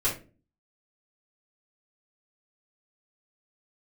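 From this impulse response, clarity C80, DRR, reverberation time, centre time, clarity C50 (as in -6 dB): 15.0 dB, -9.0 dB, 0.35 s, 23 ms, 8.0 dB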